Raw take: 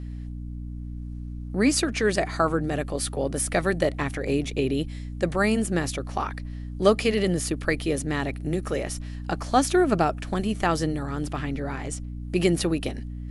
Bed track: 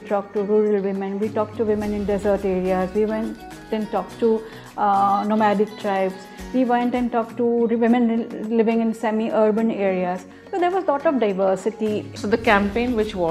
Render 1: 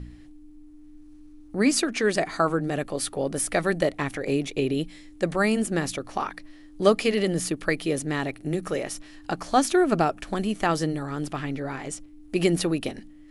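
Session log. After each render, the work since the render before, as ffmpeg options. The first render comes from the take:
ffmpeg -i in.wav -af "bandreject=frequency=60:width_type=h:width=4,bandreject=frequency=120:width_type=h:width=4,bandreject=frequency=180:width_type=h:width=4,bandreject=frequency=240:width_type=h:width=4" out.wav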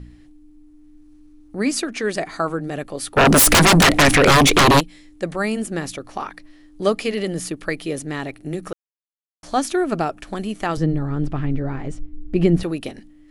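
ffmpeg -i in.wav -filter_complex "[0:a]asplit=3[link_01][link_02][link_03];[link_01]afade=type=out:start_time=3.16:duration=0.02[link_04];[link_02]aeval=exprs='0.376*sin(PI/2*10*val(0)/0.376)':channel_layout=same,afade=type=in:start_time=3.16:duration=0.02,afade=type=out:start_time=4.79:duration=0.02[link_05];[link_03]afade=type=in:start_time=4.79:duration=0.02[link_06];[link_04][link_05][link_06]amix=inputs=3:normalize=0,asettb=1/sr,asplit=3[link_07][link_08][link_09];[link_07]atrim=end=10.774[link_10];[link_08]atrim=start=10.77:end=12.63,asetpts=PTS-STARTPTS,afade=type=in:duration=0.004:curve=qsin,afade=type=out:start_time=1.856:duration=0.004:curve=qsin,aemphasis=mode=reproduction:type=riaa[link_11];[link_09]atrim=start=12.626[link_12];[link_10][link_11]acrossfade=duration=0.004:curve1=hsin:curve2=qsin[link_13];[link_13][link_12]acrossfade=duration=0.004:curve1=qsin:curve2=hsin,asplit=3[link_14][link_15][link_16];[link_14]atrim=end=8.73,asetpts=PTS-STARTPTS,afade=type=out:start_time=8.726:duration=0.004:curve=hsin[link_17];[link_15]atrim=start=8.73:end=9.43,asetpts=PTS-STARTPTS,volume=0[link_18];[link_16]atrim=start=9.43,asetpts=PTS-STARTPTS,afade=type=in:duration=0.004:curve=hsin[link_19];[link_17][link_18][link_19]concat=n=3:v=0:a=1" out.wav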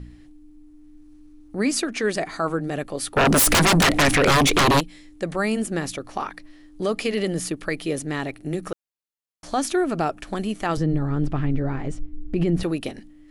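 ffmpeg -i in.wav -af "alimiter=limit=-13dB:level=0:latency=1:release=56" out.wav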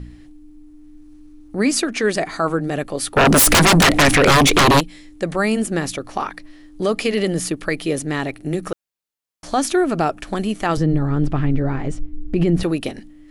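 ffmpeg -i in.wav -af "volume=4.5dB" out.wav

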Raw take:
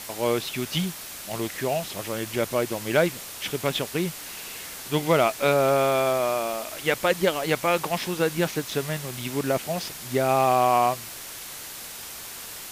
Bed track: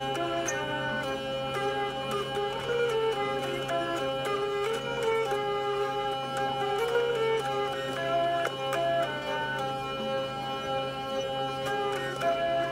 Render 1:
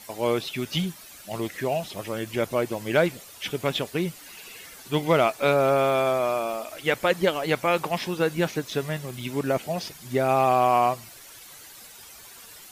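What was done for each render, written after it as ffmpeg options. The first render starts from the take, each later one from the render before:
ffmpeg -i in.wav -af "afftdn=noise_reduction=11:noise_floor=-39" out.wav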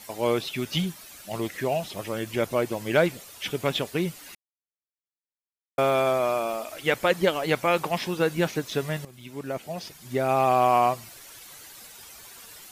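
ffmpeg -i in.wav -filter_complex "[0:a]asplit=4[link_01][link_02][link_03][link_04];[link_01]atrim=end=4.35,asetpts=PTS-STARTPTS,afade=type=out:start_time=4.346:duration=0.004:curve=hsin[link_05];[link_02]atrim=start=4.35:end=5.78,asetpts=PTS-STARTPTS,volume=0[link_06];[link_03]atrim=start=5.78:end=9.05,asetpts=PTS-STARTPTS,afade=type=in:duration=0.004:curve=hsin,afade=type=out:start_time=3.266:duration=0.004:curve=hsin:silence=0.199526[link_07];[link_04]atrim=start=9.05,asetpts=PTS-STARTPTS,afade=type=in:duration=1.59:silence=0.199526[link_08];[link_05][link_06][link_07][link_08]concat=n=4:v=0:a=1" out.wav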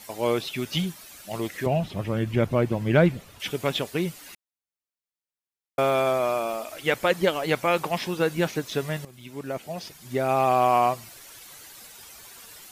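ffmpeg -i in.wav -filter_complex "[0:a]asettb=1/sr,asplit=3[link_01][link_02][link_03];[link_01]atrim=end=1.664[link_04];[link_02]atrim=start=1.66:end=3.4,asetpts=PTS-STARTPTS,afade=type=in:duration=0.004:curve=qsin,afade=type=out:start_time=1.736:duration=0.004:curve=qsin,bass=frequency=250:gain=12,treble=frequency=4000:gain=-10[link_05];[link_03]atrim=start=3.396[link_06];[link_04][link_05]acrossfade=duration=0.004:curve1=hsin:curve2=qsin[link_07];[link_07][link_06]acrossfade=duration=0.004:curve1=qsin:curve2=hsin" out.wav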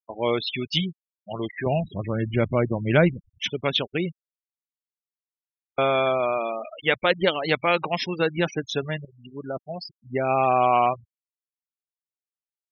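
ffmpeg -i in.wav -af "afftfilt=real='re*gte(hypot(re,im),0.0316)':imag='im*gte(hypot(re,im),0.0316)':win_size=1024:overlap=0.75,highshelf=frequency=2700:gain=9.5" out.wav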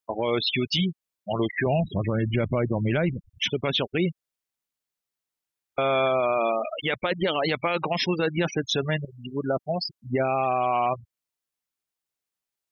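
ffmpeg -i in.wav -filter_complex "[0:a]asplit=2[link_01][link_02];[link_02]acompressor=threshold=-31dB:ratio=6,volume=3dB[link_03];[link_01][link_03]amix=inputs=2:normalize=0,alimiter=limit=-15.5dB:level=0:latency=1:release=11" out.wav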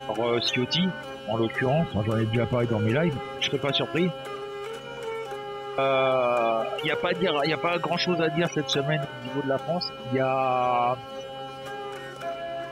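ffmpeg -i in.wav -i bed.wav -filter_complex "[1:a]volume=-5.5dB[link_01];[0:a][link_01]amix=inputs=2:normalize=0" out.wav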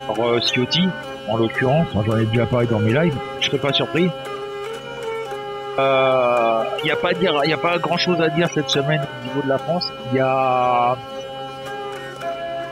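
ffmpeg -i in.wav -af "volume=6.5dB" out.wav

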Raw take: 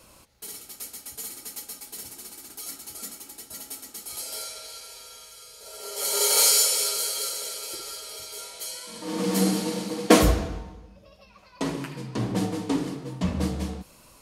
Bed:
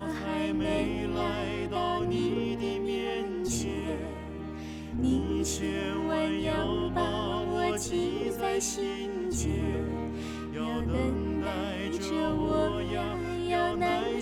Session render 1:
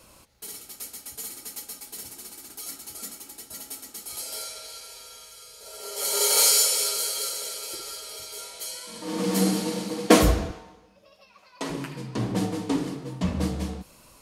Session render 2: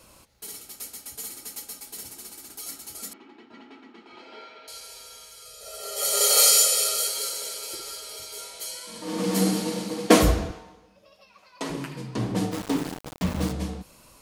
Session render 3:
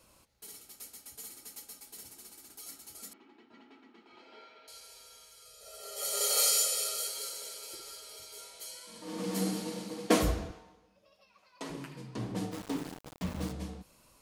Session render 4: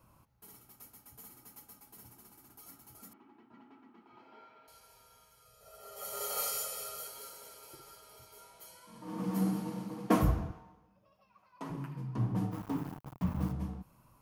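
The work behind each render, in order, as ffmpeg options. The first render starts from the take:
ffmpeg -i in.wav -filter_complex "[0:a]asettb=1/sr,asplit=3[link_01][link_02][link_03];[link_01]atrim=end=10.514[link_04];[link_02]atrim=start=10.51:end=11.7,asetpts=PTS-STARTPTS,afade=type=in:duration=0.004:curve=qsin,afade=type=out:start_time=1.186:duration=0.004:curve=qsin,highpass=frequency=490:poles=1[link_05];[link_03]atrim=start=11.696[link_06];[link_04][link_05]acrossfade=duration=0.004:curve1=hsin:curve2=qsin[link_07];[link_07][link_06]acrossfade=duration=0.004:curve1=qsin:curve2=hsin" out.wav
ffmpeg -i in.wav -filter_complex "[0:a]asettb=1/sr,asplit=3[link_01][link_02][link_03];[link_01]atrim=end=3.134[link_04];[link_02]atrim=start=3.13:end=4.68,asetpts=PTS-STARTPTS,afade=type=in:duration=0.004:curve=qsin,afade=type=out:start_time=1.546:duration=0.004:curve=qsin,highpass=230,equalizer=frequency=240:width_type=q:width=4:gain=10,equalizer=frequency=350:width_type=q:width=4:gain=7,equalizer=frequency=570:width_type=q:width=4:gain=-8,equalizer=frequency=1000:width_type=q:width=4:gain=4,lowpass=frequency=2800:width=0.5412,lowpass=frequency=2800:width=1.3066[link_05];[link_03]atrim=start=4.676[link_06];[link_04][link_05]acrossfade=duration=0.004:curve1=hsin:curve2=qsin[link_07];[link_07][link_06]acrossfade=duration=0.004:curve1=qsin:curve2=hsin,asettb=1/sr,asplit=3[link_08][link_09][link_10];[link_08]atrim=end=5.454[link_11];[link_09]atrim=start=5.45:end=7.08,asetpts=PTS-STARTPTS,afade=type=in:duration=0.004:curve=qsin,afade=type=out:start_time=1.626:duration=0.004:curve=qsin,aecho=1:1:1.6:0.72,atrim=end_sample=71883[link_12];[link_10]atrim=start=7.076[link_13];[link_11][link_12]acrossfade=duration=0.004:curve1=hsin:curve2=qsin[link_14];[link_14][link_13]acrossfade=duration=0.004:curve1=qsin:curve2=hsin,asplit=3[link_15][link_16][link_17];[link_15]afade=type=out:start_time=12.51:duration=0.02[link_18];[link_16]aeval=exprs='val(0)*gte(abs(val(0)),0.0299)':channel_layout=same,afade=type=in:start_time=12.51:duration=0.02,afade=type=out:start_time=13.51:duration=0.02[link_19];[link_17]afade=type=in:start_time=13.51:duration=0.02[link_20];[link_18][link_19][link_20]amix=inputs=3:normalize=0" out.wav
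ffmpeg -i in.wav -af "volume=-9.5dB" out.wav
ffmpeg -i in.wav -af "equalizer=frequency=125:width_type=o:width=1:gain=9,equalizer=frequency=500:width_type=o:width=1:gain=-7,equalizer=frequency=1000:width_type=o:width=1:gain=5,equalizer=frequency=2000:width_type=o:width=1:gain=-5,equalizer=frequency=4000:width_type=o:width=1:gain=-11,equalizer=frequency=8000:width_type=o:width=1:gain=-12" out.wav

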